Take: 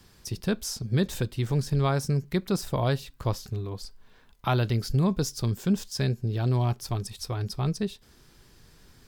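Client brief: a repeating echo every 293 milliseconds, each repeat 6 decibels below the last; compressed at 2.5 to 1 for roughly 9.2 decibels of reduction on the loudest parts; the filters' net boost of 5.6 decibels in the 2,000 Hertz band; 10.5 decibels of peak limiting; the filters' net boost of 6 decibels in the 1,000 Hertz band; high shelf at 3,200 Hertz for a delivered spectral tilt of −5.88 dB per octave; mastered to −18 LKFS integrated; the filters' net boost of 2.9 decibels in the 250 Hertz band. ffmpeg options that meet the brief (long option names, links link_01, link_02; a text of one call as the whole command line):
ffmpeg -i in.wav -af "equalizer=frequency=250:width_type=o:gain=4,equalizer=frequency=1000:width_type=o:gain=6.5,equalizer=frequency=2000:width_type=o:gain=6.5,highshelf=frequency=3200:gain=-5,acompressor=threshold=-31dB:ratio=2.5,alimiter=level_in=1dB:limit=-24dB:level=0:latency=1,volume=-1dB,aecho=1:1:293|586|879|1172|1465|1758:0.501|0.251|0.125|0.0626|0.0313|0.0157,volume=17dB" out.wav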